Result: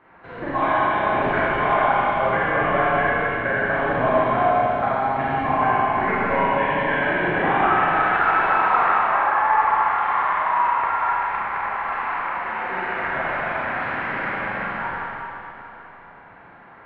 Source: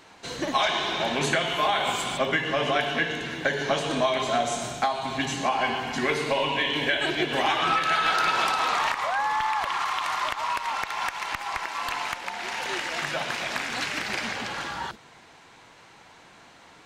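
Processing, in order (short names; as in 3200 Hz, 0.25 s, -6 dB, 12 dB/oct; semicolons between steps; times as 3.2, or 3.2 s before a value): octaver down 1 oct, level +1 dB; LPF 1800 Hz 24 dB/oct; low shelf 410 Hz -9 dB; Schroeder reverb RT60 3.1 s, combs from 32 ms, DRR -8.5 dB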